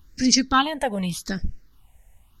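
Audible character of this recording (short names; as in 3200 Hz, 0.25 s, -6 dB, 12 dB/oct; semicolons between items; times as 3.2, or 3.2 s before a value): phasing stages 6, 0.85 Hz, lowest notch 320–1000 Hz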